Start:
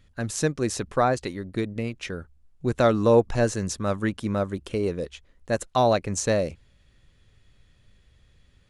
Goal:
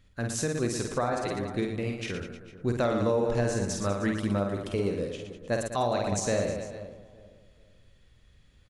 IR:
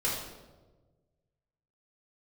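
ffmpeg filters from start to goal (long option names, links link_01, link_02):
-filter_complex "[0:a]asplit=2[link_01][link_02];[link_02]aecho=0:1:50|115|199.5|309.4|452.2:0.631|0.398|0.251|0.158|0.1[link_03];[link_01][link_03]amix=inputs=2:normalize=0,alimiter=limit=-14.5dB:level=0:latency=1:release=169,asplit=2[link_04][link_05];[link_05]adelay=431,lowpass=frequency=1200:poles=1,volume=-16dB,asplit=2[link_06][link_07];[link_07]adelay=431,lowpass=frequency=1200:poles=1,volume=0.32,asplit=2[link_08][link_09];[link_09]adelay=431,lowpass=frequency=1200:poles=1,volume=0.32[link_10];[link_06][link_08][link_10]amix=inputs=3:normalize=0[link_11];[link_04][link_11]amix=inputs=2:normalize=0,volume=-3dB"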